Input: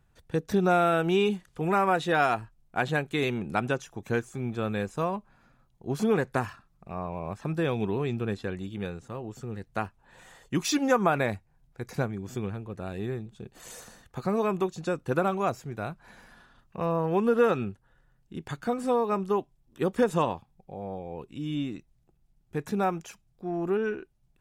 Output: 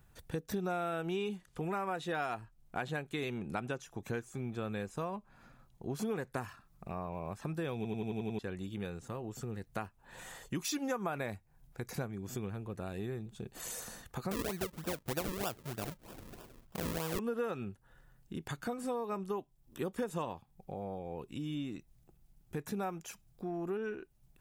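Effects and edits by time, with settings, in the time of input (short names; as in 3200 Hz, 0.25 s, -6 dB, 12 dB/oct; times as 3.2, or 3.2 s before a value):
0.71–5.99 high shelf 10000 Hz -6.5 dB
7.76 stutter in place 0.09 s, 7 plays
14.31–17.19 decimation with a swept rate 41× 3.2 Hz
whole clip: high shelf 9800 Hz +11.5 dB; compressor 2.5:1, threshold -43 dBFS; gain +2.5 dB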